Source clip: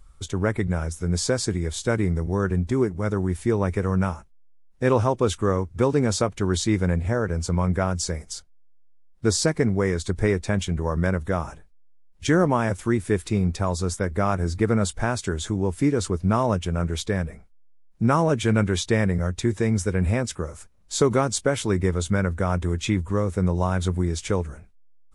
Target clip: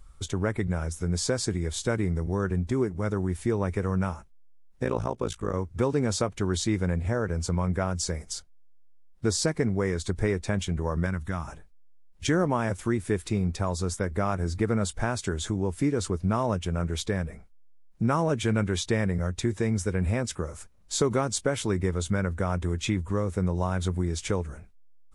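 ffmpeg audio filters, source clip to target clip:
-filter_complex "[0:a]acompressor=threshold=0.0355:ratio=1.5,asplit=3[s0][s1][s2];[s0]afade=t=out:st=4.83:d=0.02[s3];[s1]tremolo=f=56:d=0.947,afade=t=in:st=4.83:d=0.02,afade=t=out:st=5.53:d=0.02[s4];[s2]afade=t=in:st=5.53:d=0.02[s5];[s3][s4][s5]amix=inputs=3:normalize=0,asettb=1/sr,asplit=3[s6][s7][s8];[s6]atrim=end=11.064[s9];[s7]atrim=start=11.06:end=11.48,asetpts=PTS-STARTPTS,afade=t=in:d=0.004:c=qsin,afade=t=out:st=0.416:d=0.004:c=qsin,equalizer=f=500:w=1.4:g=-12.5[s10];[s8]atrim=start=11.476[s11];[s9][s10]acrossfade=d=0.004:c1=hsin:c2=qsin[s12];[s12][s11]acrossfade=d=0.004:c1=qsin:c2=hsin"

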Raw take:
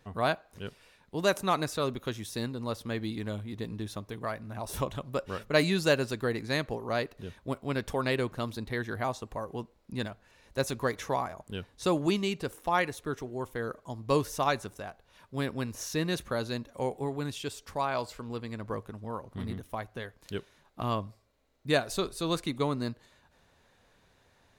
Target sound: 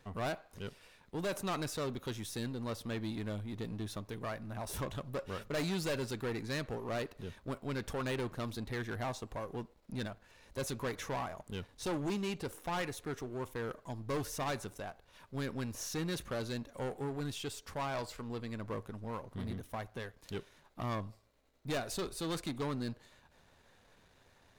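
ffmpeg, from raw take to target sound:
-af "aeval=exprs='if(lt(val(0),0),0.447*val(0),val(0))':c=same,aeval=exprs='(tanh(56.2*val(0)+0.4)-tanh(0.4))/56.2':c=same,volume=1.5"

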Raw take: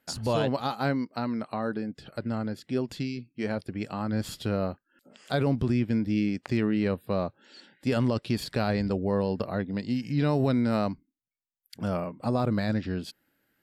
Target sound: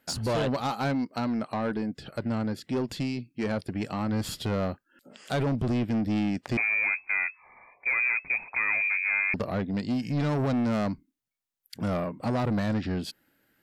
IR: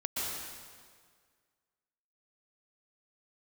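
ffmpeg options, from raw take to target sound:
-filter_complex "[0:a]asoftclip=type=tanh:threshold=0.0473,asettb=1/sr,asplit=3[s0][s1][s2];[s0]atrim=end=6.574[s3];[s1]atrim=start=6.57:end=9.34,asetpts=PTS-STARTPTS,afade=t=in:d=0.004:c=qsin,afade=t=out:st=2.766:d=0.004:c=qsin,lowpass=f=2200:t=q:w=0.5098,lowpass=f=2200:t=q:w=0.6013,lowpass=f=2200:t=q:w=0.9,lowpass=f=2200:t=q:w=2.563,afreqshift=-2600[s4];[s2]atrim=start=9.336[s5];[s3][s4]acrossfade=d=0.004:c1=hsin:c2=qsin[s6];[s6][s5]acrossfade=d=0.004:c1=qsin:c2=hsin,volume=1.58"

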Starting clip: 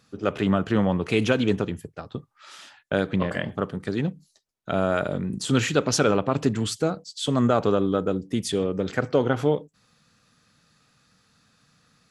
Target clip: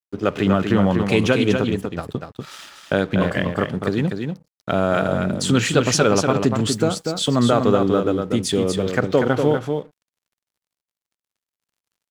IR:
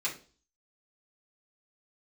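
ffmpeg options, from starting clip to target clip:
-filter_complex "[0:a]asplit=2[s0][s1];[s1]acompressor=threshold=0.0316:ratio=6,volume=1.26[s2];[s0][s2]amix=inputs=2:normalize=0,aeval=exprs='sgn(val(0))*max(abs(val(0))-0.00473,0)':c=same,aecho=1:1:242:0.531,volume=1.19"

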